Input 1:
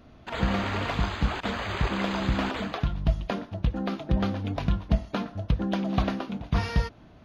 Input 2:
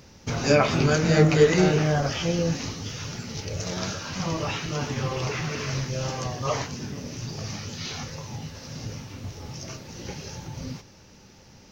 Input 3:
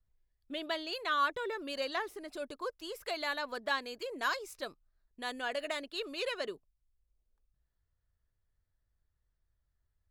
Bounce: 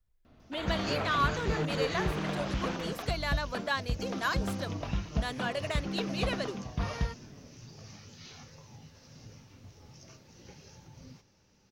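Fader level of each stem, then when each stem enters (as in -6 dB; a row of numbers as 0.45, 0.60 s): -7.5, -15.5, +1.5 dB; 0.25, 0.40, 0.00 s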